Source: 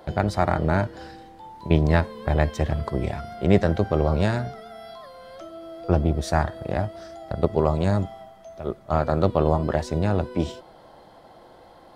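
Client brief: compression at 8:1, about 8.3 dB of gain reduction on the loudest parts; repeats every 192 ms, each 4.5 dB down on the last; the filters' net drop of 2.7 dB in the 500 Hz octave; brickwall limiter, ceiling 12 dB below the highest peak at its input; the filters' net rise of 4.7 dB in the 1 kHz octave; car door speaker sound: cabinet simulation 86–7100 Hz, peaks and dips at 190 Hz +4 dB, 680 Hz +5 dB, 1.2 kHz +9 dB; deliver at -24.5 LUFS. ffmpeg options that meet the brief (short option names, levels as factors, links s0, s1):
-af "equalizer=f=500:t=o:g=-8.5,equalizer=f=1000:t=o:g=4,acompressor=threshold=0.0708:ratio=8,alimiter=limit=0.0841:level=0:latency=1,highpass=86,equalizer=f=190:t=q:w=4:g=4,equalizer=f=680:t=q:w=4:g=5,equalizer=f=1200:t=q:w=4:g=9,lowpass=f=7100:w=0.5412,lowpass=f=7100:w=1.3066,aecho=1:1:192|384|576|768|960|1152|1344|1536|1728:0.596|0.357|0.214|0.129|0.0772|0.0463|0.0278|0.0167|0.01,volume=2.37"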